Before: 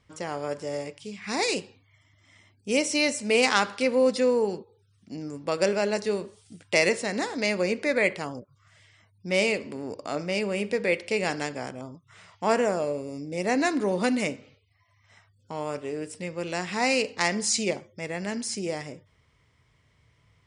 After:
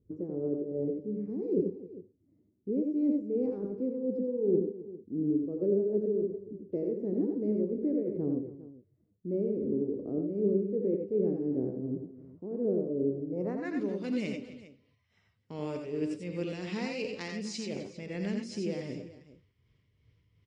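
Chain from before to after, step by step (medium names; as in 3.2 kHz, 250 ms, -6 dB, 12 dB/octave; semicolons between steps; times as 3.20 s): gate -53 dBFS, range -8 dB; high-order bell 1.5 kHz -13 dB 2.9 oct; reverse; compression, threshold -35 dBFS, peak gain reduction 13.5 dB; reverse; tremolo triangle 2.7 Hz, depth 65%; low-pass sweep 380 Hz -> 3 kHz, 13.10–13.83 s; on a send: multi-tap echo 85/95/260/403 ms -6/-7.5/-16.5/-17 dB; on the sum: trim +5.5 dB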